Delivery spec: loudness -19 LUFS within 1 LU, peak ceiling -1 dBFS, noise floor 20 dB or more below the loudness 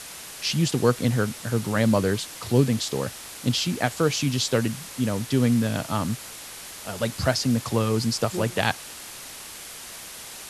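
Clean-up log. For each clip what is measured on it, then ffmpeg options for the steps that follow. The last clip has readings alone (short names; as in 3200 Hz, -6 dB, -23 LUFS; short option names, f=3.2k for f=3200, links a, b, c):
noise floor -40 dBFS; noise floor target -45 dBFS; loudness -24.5 LUFS; peak -4.5 dBFS; loudness target -19.0 LUFS
-> -af "afftdn=nr=6:nf=-40"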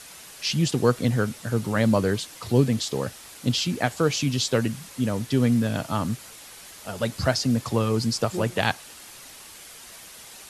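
noise floor -45 dBFS; loudness -25.0 LUFS; peak -4.5 dBFS; loudness target -19.0 LUFS
-> -af "volume=6dB,alimiter=limit=-1dB:level=0:latency=1"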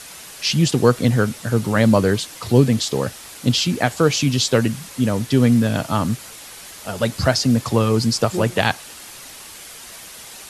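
loudness -19.0 LUFS; peak -1.0 dBFS; noise floor -39 dBFS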